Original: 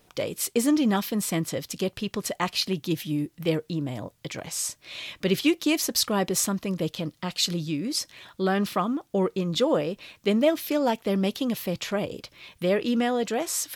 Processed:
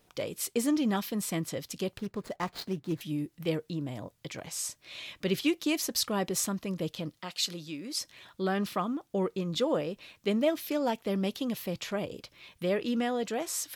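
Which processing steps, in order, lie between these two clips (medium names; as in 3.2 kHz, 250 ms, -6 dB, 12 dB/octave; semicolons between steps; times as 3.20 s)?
1.98–3.01 s: median filter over 15 samples; 7.19–8.00 s: high-pass 420 Hz 6 dB/octave; trim -5.5 dB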